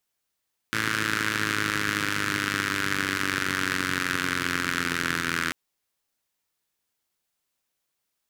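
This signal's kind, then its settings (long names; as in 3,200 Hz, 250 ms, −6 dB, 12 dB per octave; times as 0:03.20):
pulse-train model of a four-cylinder engine, changing speed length 4.79 s, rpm 3,300, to 2,500, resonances 150/270/1,500 Hz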